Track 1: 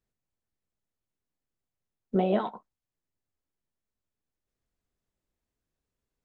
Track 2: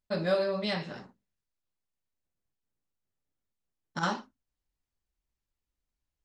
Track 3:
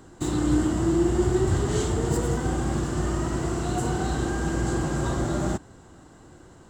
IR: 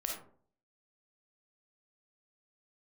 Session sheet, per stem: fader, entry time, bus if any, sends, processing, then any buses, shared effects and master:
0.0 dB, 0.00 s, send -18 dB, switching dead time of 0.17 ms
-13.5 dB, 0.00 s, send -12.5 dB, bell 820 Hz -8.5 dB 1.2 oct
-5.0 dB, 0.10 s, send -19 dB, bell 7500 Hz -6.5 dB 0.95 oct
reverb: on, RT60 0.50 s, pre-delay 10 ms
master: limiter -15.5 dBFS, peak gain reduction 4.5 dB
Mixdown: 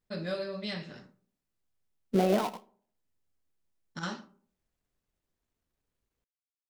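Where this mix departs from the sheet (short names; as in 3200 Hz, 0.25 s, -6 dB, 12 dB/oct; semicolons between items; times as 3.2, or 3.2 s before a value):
stem 2 -13.5 dB -> -5.0 dB; stem 3: muted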